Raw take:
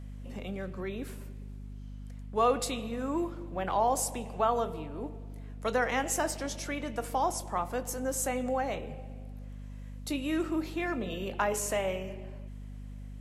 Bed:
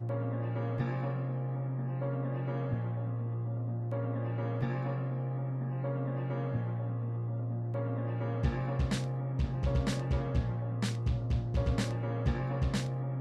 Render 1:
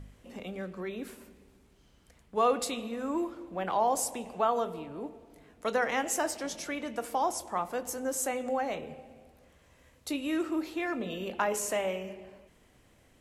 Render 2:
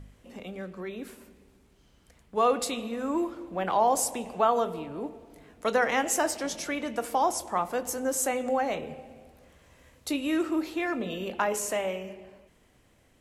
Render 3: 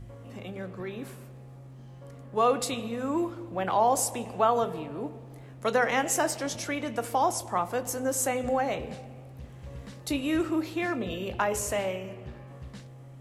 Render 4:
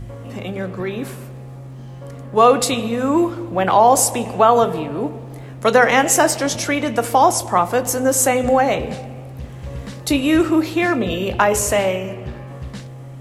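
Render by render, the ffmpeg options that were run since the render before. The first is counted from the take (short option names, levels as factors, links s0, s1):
-af "bandreject=f=50:t=h:w=4,bandreject=f=100:t=h:w=4,bandreject=f=150:t=h:w=4,bandreject=f=200:t=h:w=4,bandreject=f=250:t=h:w=4"
-af "dynaudnorm=f=560:g=9:m=1.58"
-filter_complex "[1:a]volume=0.237[s0];[0:a][s0]amix=inputs=2:normalize=0"
-af "volume=3.98,alimiter=limit=0.794:level=0:latency=1"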